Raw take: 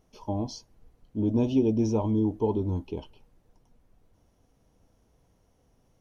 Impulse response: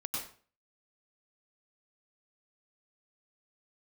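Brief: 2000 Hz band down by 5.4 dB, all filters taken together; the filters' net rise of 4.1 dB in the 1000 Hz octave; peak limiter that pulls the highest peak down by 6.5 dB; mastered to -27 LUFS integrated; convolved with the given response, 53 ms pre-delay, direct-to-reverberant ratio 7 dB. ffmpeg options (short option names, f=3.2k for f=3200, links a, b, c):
-filter_complex "[0:a]equalizer=f=1k:t=o:g=6.5,equalizer=f=2k:t=o:g=-9,alimiter=limit=-19.5dB:level=0:latency=1,asplit=2[a][b];[1:a]atrim=start_sample=2205,adelay=53[c];[b][c]afir=irnorm=-1:irlink=0,volume=-9dB[d];[a][d]amix=inputs=2:normalize=0,volume=2dB"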